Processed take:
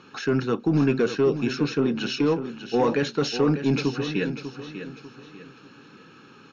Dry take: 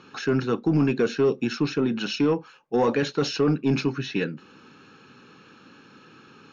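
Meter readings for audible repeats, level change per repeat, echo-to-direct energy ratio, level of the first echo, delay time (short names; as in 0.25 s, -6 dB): 3, -9.5 dB, -10.0 dB, -10.5 dB, 0.595 s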